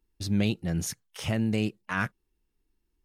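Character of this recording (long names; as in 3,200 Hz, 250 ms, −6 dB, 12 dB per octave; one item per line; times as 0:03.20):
background noise floor −79 dBFS
spectral slope −5.5 dB per octave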